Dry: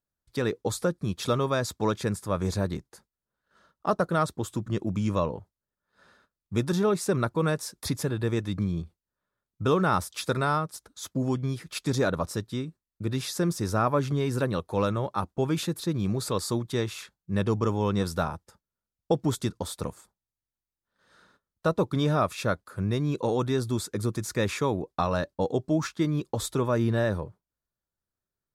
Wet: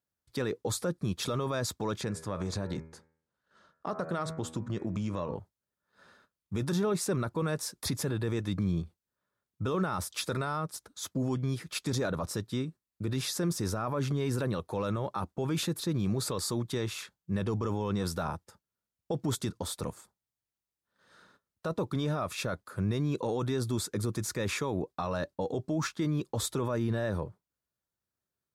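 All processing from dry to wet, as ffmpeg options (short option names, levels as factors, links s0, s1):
-filter_complex "[0:a]asettb=1/sr,asplit=3[s0][s1][s2];[s0]atrim=end=2.014[s3];[s1]atrim=start=2.01:end=5.35,asetpts=PTS-STARTPTS,afade=t=in:d=0.004:c=qsin,afade=t=out:st=3.336:d=0.004:c=qsin,lowpass=8400,bandreject=f=80.41:t=h:w=4,bandreject=f=160.82:t=h:w=4,bandreject=f=241.23:t=h:w=4,bandreject=f=321.64:t=h:w=4,bandreject=f=402.05:t=h:w=4,bandreject=f=482.46:t=h:w=4,bandreject=f=562.87:t=h:w=4,bandreject=f=643.28:t=h:w=4,bandreject=f=723.69:t=h:w=4,bandreject=f=804.1:t=h:w=4,bandreject=f=884.51:t=h:w=4,bandreject=f=964.92:t=h:w=4,bandreject=f=1045.33:t=h:w=4,bandreject=f=1125.74:t=h:w=4,bandreject=f=1206.15:t=h:w=4,bandreject=f=1286.56:t=h:w=4,bandreject=f=1366.97:t=h:w=4,bandreject=f=1447.38:t=h:w=4,bandreject=f=1527.79:t=h:w=4,bandreject=f=1608.2:t=h:w=4,bandreject=f=1688.61:t=h:w=4,bandreject=f=1769.02:t=h:w=4,bandreject=f=1849.43:t=h:w=4,bandreject=f=1929.84:t=h:w=4,bandreject=f=2010.25:t=h:w=4,bandreject=f=2090.66:t=h:w=4,bandreject=f=2171.07:t=h:w=4,bandreject=f=2251.48:t=h:w=4,bandreject=f=2331.89:t=h:w=4,bandreject=f=2412.3:t=h:w=4,bandreject=f=2492.71:t=h:w=4,acompressor=threshold=0.0398:ratio=6:attack=3.2:release=140:knee=1:detection=peak[s4];[s2]atrim=start=5.346[s5];[s3][s4]acrossfade=d=0.004:c1=hsin:c2=qsin[s6];[s6][s5]acrossfade=d=0.004:c1=qsin:c2=hsin,highpass=69,alimiter=limit=0.0794:level=0:latency=1:release=19"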